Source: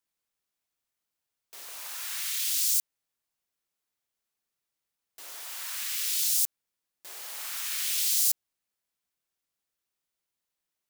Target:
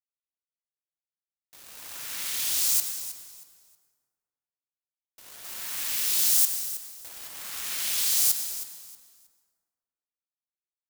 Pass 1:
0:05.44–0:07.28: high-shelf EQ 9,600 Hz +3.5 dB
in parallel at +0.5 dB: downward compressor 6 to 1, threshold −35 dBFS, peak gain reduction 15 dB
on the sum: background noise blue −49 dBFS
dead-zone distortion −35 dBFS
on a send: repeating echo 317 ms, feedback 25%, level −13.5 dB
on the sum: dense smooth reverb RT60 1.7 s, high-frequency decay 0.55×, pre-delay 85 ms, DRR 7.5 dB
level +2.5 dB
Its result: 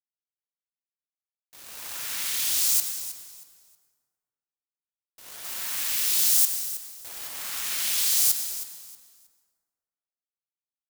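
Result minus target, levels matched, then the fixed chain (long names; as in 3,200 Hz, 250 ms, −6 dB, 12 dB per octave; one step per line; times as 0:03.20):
downward compressor: peak gain reduction −6.5 dB
0:05.44–0:07.28: high-shelf EQ 9,600 Hz +3.5 dB
in parallel at +0.5 dB: downward compressor 6 to 1, threshold −43 dBFS, peak gain reduction 21.5 dB
on the sum: background noise blue −49 dBFS
dead-zone distortion −35 dBFS
on a send: repeating echo 317 ms, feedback 25%, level −13.5 dB
on the sum: dense smooth reverb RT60 1.7 s, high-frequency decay 0.55×, pre-delay 85 ms, DRR 7.5 dB
level +2.5 dB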